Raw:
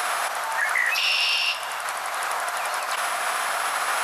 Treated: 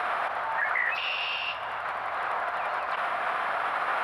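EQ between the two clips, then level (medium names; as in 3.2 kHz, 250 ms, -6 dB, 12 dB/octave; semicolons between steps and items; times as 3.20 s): distance through air 490 m; peaking EQ 64 Hz +12.5 dB 1.7 oct; 0.0 dB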